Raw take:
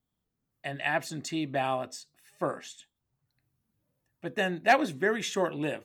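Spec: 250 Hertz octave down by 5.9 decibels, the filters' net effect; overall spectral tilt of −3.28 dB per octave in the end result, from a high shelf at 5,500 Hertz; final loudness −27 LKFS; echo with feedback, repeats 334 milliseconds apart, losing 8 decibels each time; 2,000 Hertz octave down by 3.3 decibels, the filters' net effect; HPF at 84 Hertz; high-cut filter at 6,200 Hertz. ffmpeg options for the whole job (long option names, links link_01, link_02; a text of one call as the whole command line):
ffmpeg -i in.wav -af "highpass=84,lowpass=6200,equalizer=frequency=250:width_type=o:gain=-8.5,equalizer=frequency=2000:width_type=o:gain=-5,highshelf=frequency=5500:gain=9,aecho=1:1:334|668|1002|1336|1670:0.398|0.159|0.0637|0.0255|0.0102,volume=5dB" out.wav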